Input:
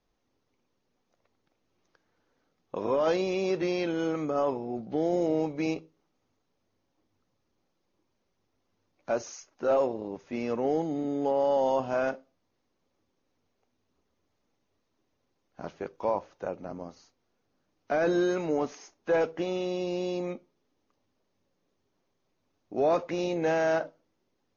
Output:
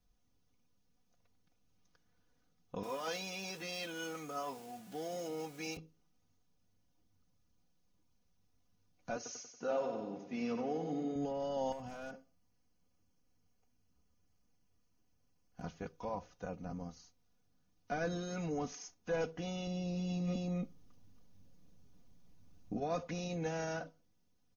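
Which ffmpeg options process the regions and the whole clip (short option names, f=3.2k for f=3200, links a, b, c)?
-filter_complex "[0:a]asettb=1/sr,asplit=3[a][b][c];[a]atrim=end=2.834[d];[b]atrim=start=2.83:end=5.77,asetpts=PTS-STARTPTS,afade=t=in:d=0.004:c=qsin,afade=t=out:st=2.936:d=0.004:c=qsin,aeval=exprs='val(0)+0.5*0.00596*sgn(val(0))':c=same,highpass=f=900:p=1,asplit=2[e][f];[f]adelay=15,volume=-13dB[g];[e][g]amix=inputs=2:normalize=0,atrim=end_sample=129654[h];[c]atrim=start=5.766[i];[d][h]acrossfade=d=0.004:c1=hsin:c2=qsin[j];[j][i]acrossfade=d=0.004:c1=qsin:c2=hsin,asettb=1/sr,asplit=3[k][l][m];[k]atrim=end=9.164[n];[l]atrim=start=9.16:end=11.16,asetpts=PTS-STARTPTS,afade=t=in:d=0.004:c=qsin,afade=t=out:st=1.996:d=0.004:c=qsin,agate=range=-33dB:threshold=-55dB:ratio=3:release=100:detection=peak,highpass=210,lowpass=5.3k,aecho=1:1:93|186|279|372|465|558:0.422|0.219|0.114|0.0593|0.0308|0.016,atrim=end_sample=88200[o];[m]atrim=start=11.156[p];[n][o]acrossfade=d=0.004:c1=hsin:c2=qsin[q];[q][p]acrossfade=d=0.004:c1=qsin:c2=hsin,asettb=1/sr,asplit=3[r][s][t];[r]atrim=end=11.724[u];[s]atrim=start=11.72:end=15.63,asetpts=PTS-STARTPTS,afade=t=in:d=0.004:c=qsin,afade=t=out:st=3.906:d=0.004:c=qsin,bandreject=f=3.7k:w=6.3,acompressor=threshold=-33dB:ratio=6:attack=3.2:release=140:knee=1:detection=peak,aeval=exprs='clip(val(0),-1,0.0266)':c=same[v];[t]atrim=start=15.626[w];[u][v]acrossfade=d=0.004:c1=hsin:c2=qsin[x];[x][w]acrossfade=d=0.004:c1=qsin:c2=hsin,asettb=1/sr,asplit=3[y][z][aa];[y]atrim=end=19.674[ab];[z]atrim=start=19.67:end=22.8,asetpts=PTS-STARTPTS,afade=t=in:d=0.004:c=qsin,afade=t=out:st=3.126:d=0.004:c=qsin,lowshelf=f=420:g=8,aecho=1:1:278:0.473,atrim=end_sample=138033,acontrast=30[ac];[aa]atrim=start=22.796[ad];[ab][ac]acrossfade=d=0.004:c1=hsin:c2=qsin[ae];[ae][ad]acrossfade=d=0.004:c1=qsin:c2=hsin,equalizer=f=125:t=o:w=1:g=10,equalizer=f=250:t=o:w=1:g=-10,equalizer=f=500:t=o:w=1:g=-10,equalizer=f=1k:t=o:w=1:g=-8,equalizer=f=2k:t=o:w=1:g=-8,equalizer=f=4k:t=o:w=1:g=-5,alimiter=level_in=7.5dB:limit=-24dB:level=0:latency=1:release=47,volume=-7.5dB,aecho=1:1:4.1:0.74,volume=1.5dB"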